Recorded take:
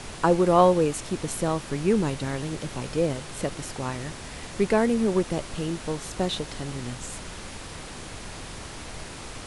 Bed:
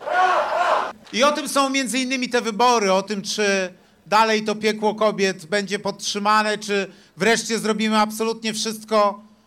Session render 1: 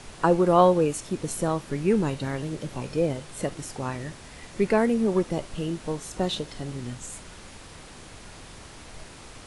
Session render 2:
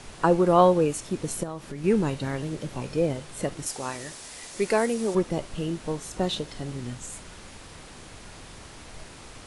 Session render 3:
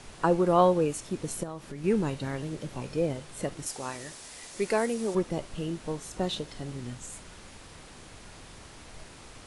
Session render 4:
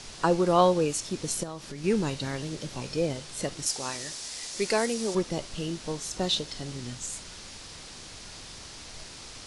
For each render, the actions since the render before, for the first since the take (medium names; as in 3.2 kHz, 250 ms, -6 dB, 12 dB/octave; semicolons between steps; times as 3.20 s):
noise print and reduce 6 dB
1.43–1.84 s: compression 3:1, threshold -33 dBFS; 3.66–5.15 s: tone controls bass -10 dB, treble +10 dB
trim -3.5 dB
peaking EQ 5.1 kHz +11.5 dB 1.5 oct